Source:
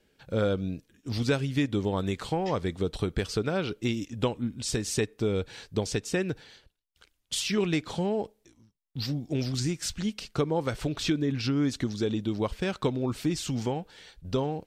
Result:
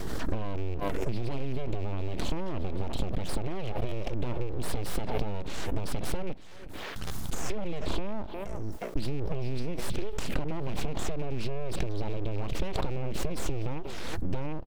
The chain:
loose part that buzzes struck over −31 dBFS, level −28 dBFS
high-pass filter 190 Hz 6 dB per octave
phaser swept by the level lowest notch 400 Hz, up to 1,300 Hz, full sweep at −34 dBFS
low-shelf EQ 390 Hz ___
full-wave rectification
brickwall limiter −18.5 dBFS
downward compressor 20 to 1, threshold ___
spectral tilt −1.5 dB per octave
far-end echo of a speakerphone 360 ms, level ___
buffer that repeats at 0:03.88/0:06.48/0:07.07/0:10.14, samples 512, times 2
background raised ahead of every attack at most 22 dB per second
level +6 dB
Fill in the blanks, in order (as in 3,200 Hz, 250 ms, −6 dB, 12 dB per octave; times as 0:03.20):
+12 dB, −36 dBFS, −21 dB